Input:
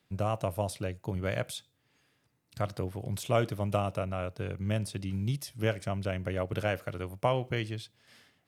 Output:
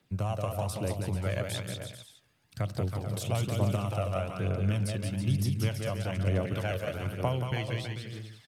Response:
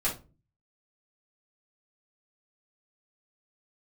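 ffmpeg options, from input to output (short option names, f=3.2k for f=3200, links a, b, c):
-filter_complex "[0:a]acrossover=split=150|3000[a][b][c];[b]acompressor=threshold=-32dB:ratio=6[d];[a][d][c]amix=inputs=3:normalize=0,aecho=1:1:180|324|439.2|531.4|605.1:0.631|0.398|0.251|0.158|0.1,aphaser=in_gain=1:out_gain=1:delay=1.9:decay=0.4:speed=1.1:type=triangular"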